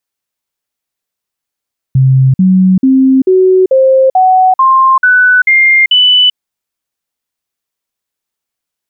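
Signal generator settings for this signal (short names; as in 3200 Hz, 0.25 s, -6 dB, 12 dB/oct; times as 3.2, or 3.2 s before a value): stepped sine 132 Hz up, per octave 2, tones 10, 0.39 s, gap 0.05 s -3.5 dBFS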